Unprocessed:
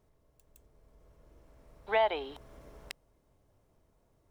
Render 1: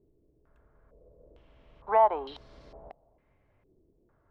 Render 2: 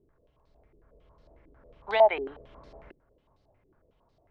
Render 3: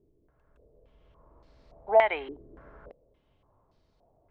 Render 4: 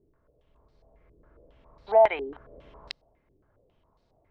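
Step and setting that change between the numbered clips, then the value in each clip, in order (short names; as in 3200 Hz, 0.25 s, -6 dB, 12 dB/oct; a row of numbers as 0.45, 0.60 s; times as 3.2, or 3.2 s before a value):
stepped low-pass, rate: 2.2, 11, 3.5, 7.3 Hz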